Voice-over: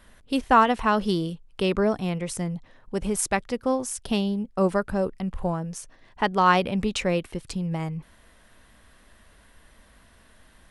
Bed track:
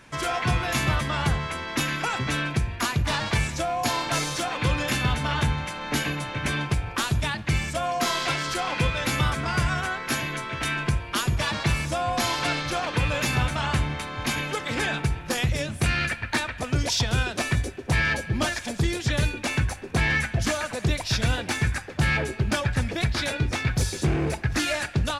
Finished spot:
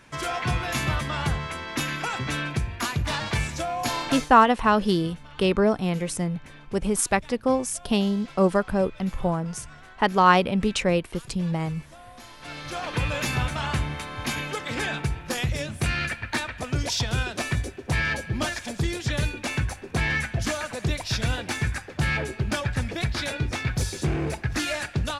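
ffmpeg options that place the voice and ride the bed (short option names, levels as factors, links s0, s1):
-filter_complex "[0:a]adelay=3800,volume=1.26[s0];[1:a]volume=7.08,afade=t=out:st=4.09:d=0.22:silence=0.112202,afade=t=in:st=12.39:d=0.56:silence=0.112202[s1];[s0][s1]amix=inputs=2:normalize=0"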